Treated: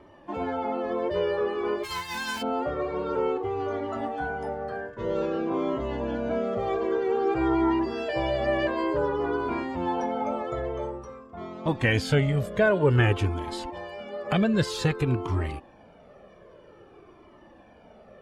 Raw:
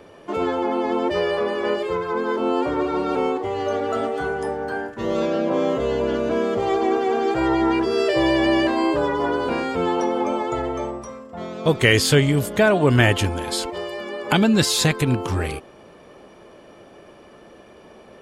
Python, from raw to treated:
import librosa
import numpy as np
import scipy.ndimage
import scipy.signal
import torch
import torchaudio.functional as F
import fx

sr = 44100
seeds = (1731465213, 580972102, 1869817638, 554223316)

y = fx.envelope_flatten(x, sr, power=0.1, at=(1.83, 2.41), fade=0.02)
y = fx.lowpass(y, sr, hz=1700.0, slope=6)
y = fx.comb_cascade(y, sr, direction='falling', hz=0.52)